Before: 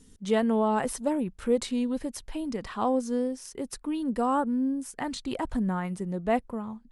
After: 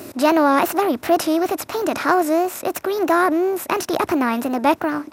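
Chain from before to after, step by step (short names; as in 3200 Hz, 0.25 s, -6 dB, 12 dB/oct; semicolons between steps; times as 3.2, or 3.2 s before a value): per-bin compression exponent 0.6; wow and flutter 95 cents; speed mistake 33 rpm record played at 45 rpm; HPF 100 Hz 24 dB/oct; gain +7 dB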